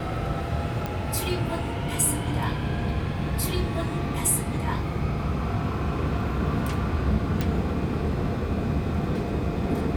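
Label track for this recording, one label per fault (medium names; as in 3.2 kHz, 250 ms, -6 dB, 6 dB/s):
0.860000	0.860000	pop -16 dBFS
7.410000	7.410000	pop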